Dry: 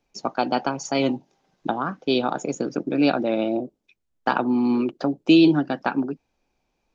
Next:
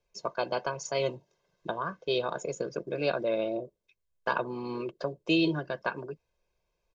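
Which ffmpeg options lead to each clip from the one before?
-af "aecho=1:1:1.9:0.91,volume=0.376"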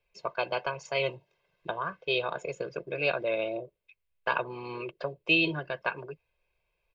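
-af "equalizer=f=250:t=o:w=0.67:g=-11,equalizer=f=2500:t=o:w=0.67:g=10,equalizer=f=6300:t=o:w=0.67:g=-12"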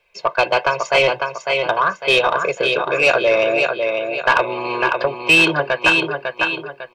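-filter_complex "[0:a]asplit=2[s0][s1];[s1]aecho=0:1:551|1102|1653|2204|2755:0.501|0.19|0.0724|0.0275|0.0105[s2];[s0][s2]amix=inputs=2:normalize=0,asplit=2[s3][s4];[s4]highpass=f=720:p=1,volume=6.31,asoftclip=type=tanh:threshold=0.266[s5];[s3][s5]amix=inputs=2:normalize=0,lowpass=f=3700:p=1,volume=0.501,volume=2.66"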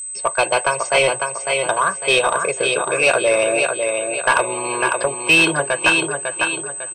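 -filter_complex "[0:a]aeval=exprs='val(0)+0.0501*sin(2*PI*8200*n/s)':c=same,asplit=2[s0][s1];[s1]adelay=449,lowpass=f=1300:p=1,volume=0.0708,asplit=2[s2][s3];[s3]adelay=449,lowpass=f=1300:p=1,volume=0.47,asplit=2[s4][s5];[s5]adelay=449,lowpass=f=1300:p=1,volume=0.47[s6];[s0][s2][s4][s6]amix=inputs=4:normalize=0,volume=0.891"

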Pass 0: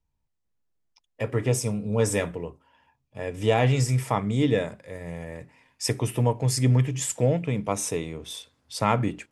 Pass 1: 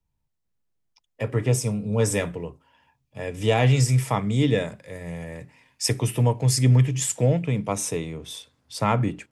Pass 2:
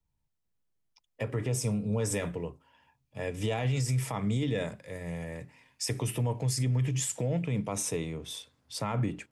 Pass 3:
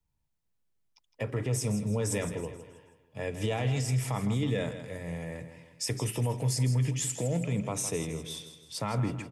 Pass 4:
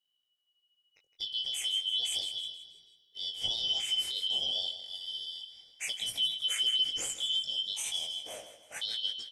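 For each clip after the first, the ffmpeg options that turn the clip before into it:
-filter_complex "[0:a]equalizer=f=140:t=o:w=0.94:g=4,acrossover=split=110|1200|2000[s0][s1][s2][s3];[s3]dynaudnorm=f=390:g=11:m=1.58[s4];[s0][s1][s2][s4]amix=inputs=4:normalize=0"
-af "alimiter=limit=0.112:level=0:latency=1:release=54,volume=0.708"
-af "aecho=1:1:161|322|483|644|805:0.282|0.124|0.0546|0.024|0.0106"
-af "afftfilt=real='real(if(lt(b,272),68*(eq(floor(b/68),0)*2+eq(floor(b/68),1)*3+eq(floor(b/68),2)*0+eq(floor(b/68),3)*1)+mod(b,68),b),0)':imag='imag(if(lt(b,272),68*(eq(floor(b/68),0)*2+eq(floor(b/68),1)*3+eq(floor(b/68),2)*0+eq(floor(b/68),3)*1)+mod(b,68),b),0)':win_size=2048:overlap=0.75,flanger=delay=17.5:depth=4.6:speed=0.33"

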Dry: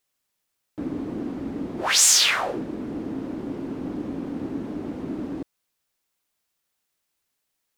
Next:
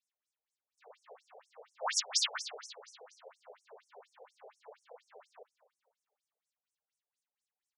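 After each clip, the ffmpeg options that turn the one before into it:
-filter_complex "[0:a]bandreject=f=5900:w=30,asplit=5[s0][s1][s2][s3][s4];[s1]adelay=247,afreqshift=-110,volume=0.211[s5];[s2]adelay=494,afreqshift=-220,volume=0.0912[s6];[s3]adelay=741,afreqshift=-330,volume=0.0389[s7];[s4]adelay=988,afreqshift=-440,volume=0.0168[s8];[s0][s5][s6][s7][s8]amix=inputs=5:normalize=0,afftfilt=real='re*between(b*sr/1024,560*pow(7900/560,0.5+0.5*sin(2*PI*4.2*pts/sr))/1.41,560*pow(7900/560,0.5+0.5*sin(2*PI*4.2*pts/sr))*1.41)':imag='im*between(b*sr/1024,560*pow(7900/560,0.5+0.5*sin(2*PI*4.2*pts/sr))/1.41,560*pow(7900/560,0.5+0.5*sin(2*PI*4.2*pts/sr))*1.41)':win_size=1024:overlap=0.75,volume=0.422"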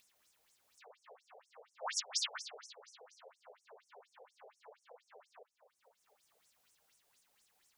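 -af "acompressor=mode=upward:threshold=0.00398:ratio=2.5,volume=0.531"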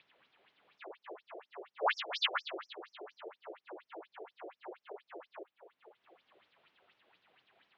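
-af "highpass=f=210:t=q:w=0.5412,highpass=f=210:t=q:w=1.307,lowpass=f=3500:t=q:w=0.5176,lowpass=f=3500:t=q:w=0.7071,lowpass=f=3500:t=q:w=1.932,afreqshift=-81,volume=3.35"

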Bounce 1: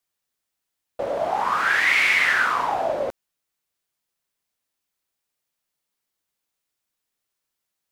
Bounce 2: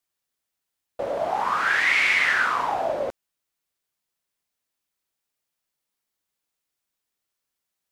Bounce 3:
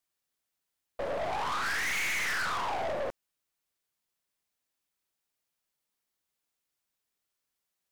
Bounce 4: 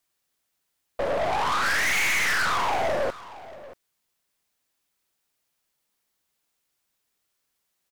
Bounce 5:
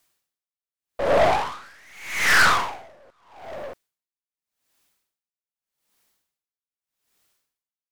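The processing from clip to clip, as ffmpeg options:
-filter_complex "[0:a]acrossover=split=9900[s0][s1];[s1]acompressor=threshold=0.00141:ratio=4:attack=1:release=60[s2];[s0][s2]amix=inputs=2:normalize=0,volume=0.841"
-af "aeval=exprs='(tanh(31.6*val(0)+0.5)-tanh(0.5))/31.6':c=same"
-af "aecho=1:1:632:0.133,volume=2.37"
-af "aeval=exprs='val(0)*pow(10,-36*(0.5-0.5*cos(2*PI*0.83*n/s))/20)':c=same,volume=2.82"

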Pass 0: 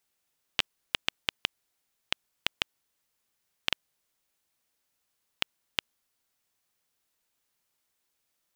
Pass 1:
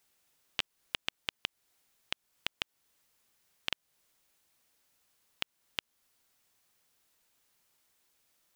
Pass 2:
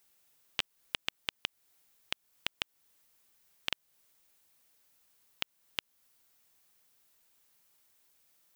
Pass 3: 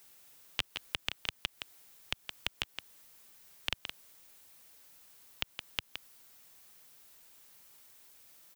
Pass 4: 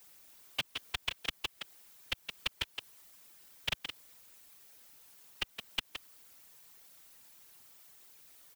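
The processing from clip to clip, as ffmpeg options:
-af "alimiter=limit=0.158:level=0:latency=1:release=269,volume=1.88"
-af "highshelf=f=12000:g=7.5"
-filter_complex "[0:a]aecho=1:1:168:0.126,acrossover=split=110[s0][s1];[s1]alimiter=limit=0.0841:level=0:latency=1:release=34[s2];[s0][s2]amix=inputs=2:normalize=0,volume=3.16"
-af "afftfilt=real='hypot(re,im)*cos(2*PI*random(0))':imag='hypot(re,im)*sin(2*PI*random(1))':win_size=512:overlap=0.75,volume=2.11"

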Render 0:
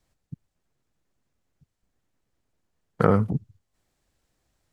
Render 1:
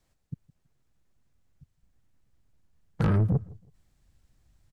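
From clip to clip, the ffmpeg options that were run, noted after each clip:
-filter_complex "[0:a]asubboost=boost=4.5:cutoff=200,asoftclip=type=tanh:threshold=0.106,asplit=2[s0][s1];[s1]adelay=163,lowpass=f=2000:p=1,volume=0.0708,asplit=2[s2][s3];[s3]adelay=163,lowpass=f=2000:p=1,volume=0.29[s4];[s0][s2][s4]amix=inputs=3:normalize=0"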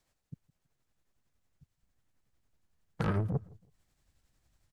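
-af "lowshelf=f=300:g=-7.5,tremolo=f=11:d=0.39"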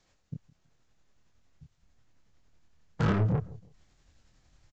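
-filter_complex "[0:a]aresample=16000,asoftclip=type=tanh:threshold=0.0299,aresample=44100,asplit=2[s0][s1];[s1]adelay=26,volume=0.668[s2];[s0][s2]amix=inputs=2:normalize=0,volume=2.37"

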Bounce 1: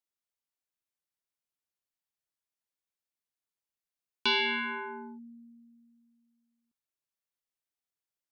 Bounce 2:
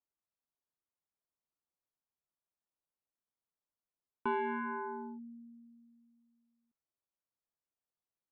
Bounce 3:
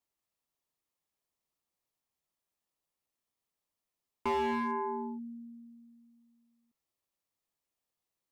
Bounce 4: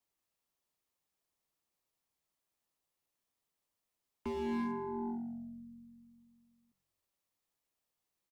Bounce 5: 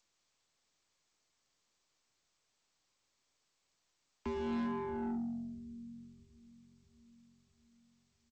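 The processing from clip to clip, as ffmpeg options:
-af "lowpass=f=1300:w=0.5412,lowpass=f=1300:w=1.3066"
-af "aeval=exprs='0.075*(cos(1*acos(clip(val(0)/0.075,-1,1)))-cos(1*PI/2))+0.000531*(cos(2*acos(clip(val(0)/0.075,-1,1)))-cos(2*PI/2))+0.00168*(cos(3*acos(clip(val(0)/0.075,-1,1)))-cos(3*PI/2))+0.000422*(cos(4*acos(clip(val(0)/0.075,-1,1)))-cos(4*PI/2))':c=same,asoftclip=type=hard:threshold=0.0237,bandreject=f=1500:w=8,volume=2.11"
-filter_complex "[0:a]asplit=6[s0][s1][s2][s3][s4][s5];[s1]adelay=94,afreqshift=-45,volume=0.119[s6];[s2]adelay=188,afreqshift=-90,volume=0.0692[s7];[s3]adelay=282,afreqshift=-135,volume=0.0398[s8];[s4]adelay=376,afreqshift=-180,volume=0.0232[s9];[s5]adelay=470,afreqshift=-225,volume=0.0135[s10];[s0][s6][s7][s8][s9][s10]amix=inputs=6:normalize=0,acrossover=split=460|3000[s11][s12][s13];[s12]acompressor=threshold=0.01:ratio=6[s14];[s11][s14][s13]amix=inputs=3:normalize=0,acrossover=split=350[s15][s16];[s16]alimiter=level_in=4.73:limit=0.0631:level=0:latency=1,volume=0.211[s17];[s15][s17]amix=inputs=2:normalize=0,volume=1.12"
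-filter_complex "[0:a]acrossover=split=180[s0][s1];[s0]aecho=1:1:644|1288|1932|2576|3220|3864:0.447|0.232|0.121|0.0628|0.0327|0.017[s2];[s1]asoftclip=type=tanh:threshold=0.0126[s3];[s2][s3]amix=inputs=2:normalize=0,volume=1.41" -ar 16000 -c:a g722

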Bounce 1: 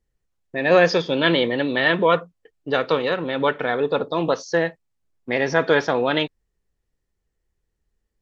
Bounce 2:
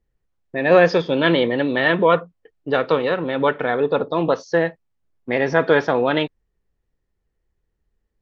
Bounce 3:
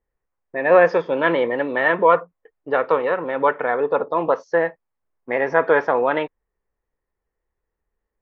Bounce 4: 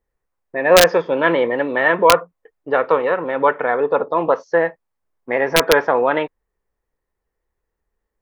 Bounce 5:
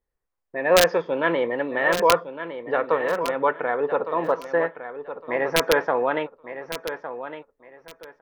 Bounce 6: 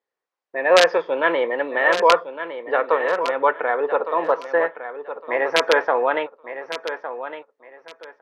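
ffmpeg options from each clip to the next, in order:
-af "lowpass=f=2300:p=1,volume=1.33"
-af "equalizer=f=125:t=o:w=1:g=-4,equalizer=f=500:t=o:w=1:g=6,equalizer=f=1000:t=o:w=1:g=10,equalizer=f=2000:t=o:w=1:g=7,equalizer=f=4000:t=o:w=1:g=-9,volume=0.398"
-af "aeval=exprs='(mod(1.5*val(0)+1,2)-1)/1.5':c=same,volume=1.33"
-af "aecho=1:1:1159|2318|3477:0.282|0.0648|0.0149,volume=0.501"
-af "highpass=410,lowpass=5000,volume=1.58"

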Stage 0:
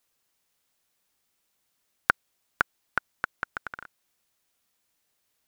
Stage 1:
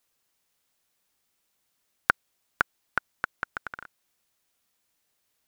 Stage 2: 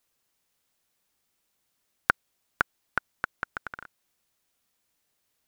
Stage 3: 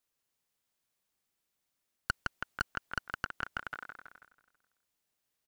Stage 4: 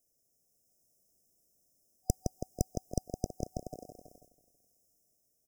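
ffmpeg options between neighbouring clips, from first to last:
-af anull
-af "lowshelf=f=470:g=2.5,volume=0.891"
-filter_complex "[0:a]asplit=2[s0][s1];[s1]aecho=0:1:163|326|489|652|815|978:0.398|0.211|0.112|0.0593|0.0314|0.0166[s2];[s0][s2]amix=inputs=2:normalize=0,agate=range=0.501:threshold=0.00158:ratio=16:detection=peak,aeval=exprs='(tanh(11.2*val(0)+0.65)-tanh(0.65))/11.2':c=same,volume=1.12"
-af "dynaudnorm=f=110:g=11:m=1.41,afftfilt=real='re*(1-between(b*sr/4096,750,5000))':imag='im*(1-between(b*sr/4096,750,5000))':win_size=4096:overlap=0.75,volume=2.66"

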